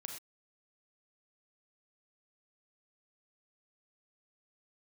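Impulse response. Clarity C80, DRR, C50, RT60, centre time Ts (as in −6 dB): 8.0 dB, 2.5 dB, 5.0 dB, non-exponential decay, 26 ms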